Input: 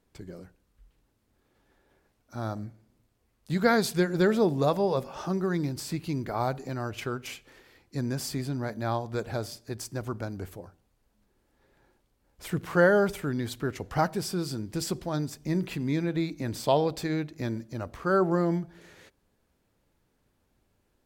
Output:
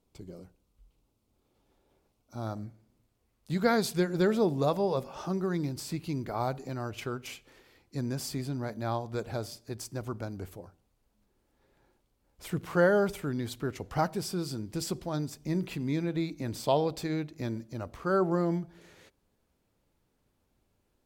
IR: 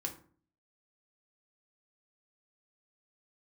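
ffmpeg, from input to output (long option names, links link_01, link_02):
-af "asetnsamples=nb_out_samples=441:pad=0,asendcmd='2.47 equalizer g -3.5',equalizer=frequency=1700:width_type=o:width=0.44:gain=-13.5,volume=-2.5dB"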